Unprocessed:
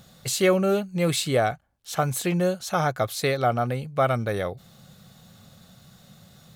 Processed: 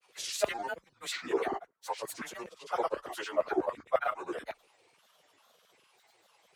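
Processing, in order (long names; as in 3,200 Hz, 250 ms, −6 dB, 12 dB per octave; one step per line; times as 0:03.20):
phase-vocoder pitch shift without resampling −5 semitones
on a send at −20 dB: guitar amp tone stack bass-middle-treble 6-0-2 + convolution reverb RT60 2.2 s, pre-delay 4 ms
on the sum: auto-filter high-pass saw down 9.7 Hz 370–1,700 Hz
frequency shifter +21 Hz
granular cloud, pitch spread up and down by 7 semitones
level −7 dB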